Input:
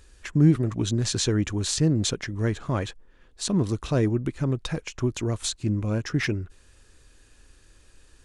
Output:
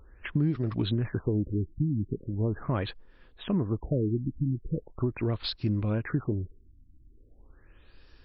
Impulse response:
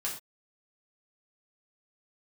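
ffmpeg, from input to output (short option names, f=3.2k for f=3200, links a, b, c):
-af "acompressor=threshold=-23dB:ratio=6,afftfilt=real='re*lt(b*sr/1024,320*pow(5700/320,0.5+0.5*sin(2*PI*0.4*pts/sr)))':imag='im*lt(b*sr/1024,320*pow(5700/320,0.5+0.5*sin(2*PI*0.4*pts/sr)))':win_size=1024:overlap=0.75"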